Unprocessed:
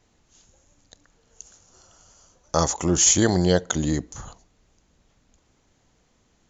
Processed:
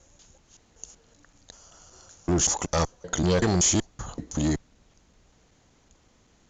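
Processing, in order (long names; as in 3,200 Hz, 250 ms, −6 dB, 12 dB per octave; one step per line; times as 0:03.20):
slices reordered back to front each 190 ms, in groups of 4
tube saturation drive 21 dB, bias 0.25
level +3 dB
mu-law 128 kbit/s 16,000 Hz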